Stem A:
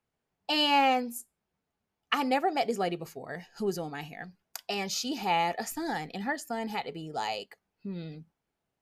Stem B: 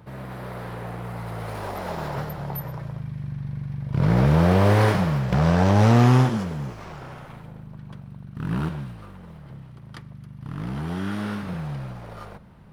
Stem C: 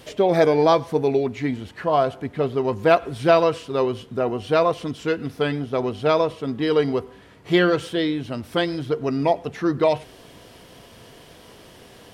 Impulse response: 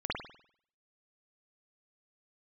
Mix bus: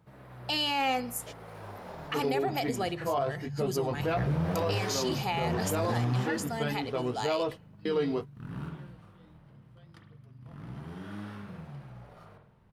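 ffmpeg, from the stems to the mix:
-filter_complex "[0:a]highshelf=f=2500:g=7,volume=0.708,asplit=3[s0][s1][s2];[s1]volume=0.0631[s3];[1:a]flanger=delay=6:depth=3:regen=72:speed=0.9:shape=triangular,volume=0.224,asplit=2[s4][s5];[s5]volume=0.531[s6];[2:a]flanger=delay=15.5:depth=7.3:speed=0.32,adelay=1200,volume=0.562[s7];[s2]apad=whole_len=588235[s8];[s7][s8]sidechaingate=range=0.02:threshold=0.00316:ratio=16:detection=peak[s9];[3:a]atrim=start_sample=2205[s10];[s3][s6]amix=inputs=2:normalize=0[s11];[s11][s10]afir=irnorm=-1:irlink=0[s12];[s0][s4][s9][s12]amix=inputs=4:normalize=0,alimiter=limit=0.0944:level=0:latency=1:release=38"

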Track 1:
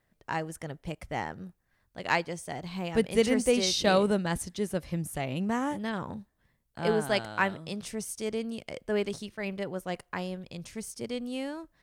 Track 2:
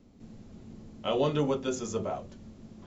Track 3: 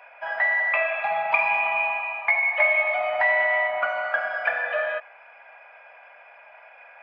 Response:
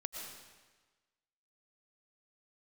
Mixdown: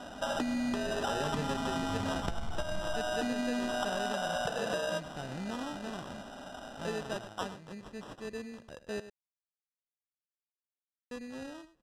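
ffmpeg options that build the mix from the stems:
-filter_complex "[0:a]volume=0.376,asplit=3[s0][s1][s2];[s0]atrim=end=9,asetpts=PTS-STARTPTS,afade=t=out:st=8.996:d=0.004:c=hsin[s3];[s1]atrim=start=9:end=11.11,asetpts=PTS-STARTPTS,volume=0[s4];[s2]atrim=start=11.11,asetpts=PTS-STARTPTS,afade=t=in:d=0.004:c=hsin[s5];[s3][s4][s5]concat=n=3:v=0:a=1,asplit=2[s6][s7];[s7]volume=0.2[s8];[1:a]asubboost=boost=12:cutoff=91,volume=1[s9];[2:a]aecho=1:1:1.5:0.32,acompressor=threshold=0.0447:ratio=6,volume=1.33,asplit=2[s10][s11];[s11]volume=0.126[s12];[s8][s12]amix=inputs=2:normalize=0,aecho=0:1:99:1[s13];[s6][s9][s10][s13]amix=inputs=4:normalize=0,acrusher=samples=20:mix=1:aa=0.000001,lowpass=7400,acompressor=threshold=0.0282:ratio=4"

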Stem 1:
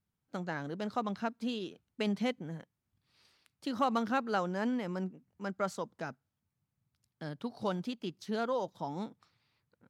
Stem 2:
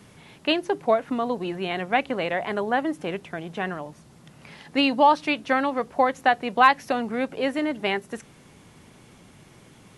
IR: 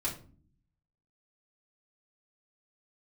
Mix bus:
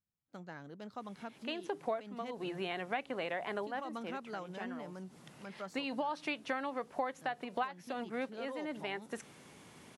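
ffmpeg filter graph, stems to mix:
-filter_complex "[0:a]volume=0.299,asplit=2[s0][s1];[1:a]highpass=f=240:p=1,adelay=1000,volume=0.708[s2];[s1]apad=whole_len=483783[s3];[s2][s3]sidechaincompress=threshold=0.00251:ratio=12:attack=22:release=168[s4];[s0][s4]amix=inputs=2:normalize=0,acompressor=threshold=0.0158:ratio=3"

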